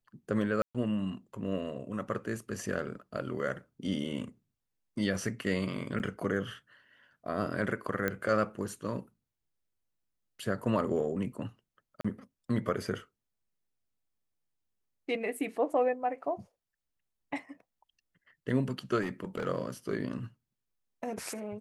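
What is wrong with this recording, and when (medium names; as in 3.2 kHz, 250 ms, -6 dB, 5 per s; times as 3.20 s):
0.62–0.75 s: dropout 126 ms
5.99–6.00 s: dropout 8.4 ms
8.08 s: pop -17 dBFS
12.01–12.04 s: dropout 35 ms
19.01–19.48 s: clipped -29 dBFS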